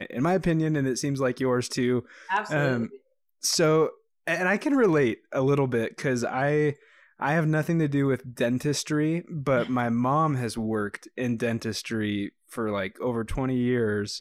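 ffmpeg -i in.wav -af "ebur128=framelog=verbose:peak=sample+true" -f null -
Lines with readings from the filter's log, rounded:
Integrated loudness:
  I:         -26.1 LUFS
  Threshold: -36.2 LUFS
Loudness range:
  LRA:         3.8 LU
  Threshold: -46.1 LUFS
  LRA low:   -28.5 LUFS
  LRA high:  -24.7 LUFS
Sample peak:
  Peak:      -11.5 dBFS
True peak:
  Peak:      -11.5 dBFS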